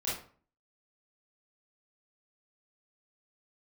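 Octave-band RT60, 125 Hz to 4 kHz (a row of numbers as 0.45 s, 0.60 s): 0.55 s, 0.55 s, 0.45 s, 0.45 s, 0.35 s, 0.30 s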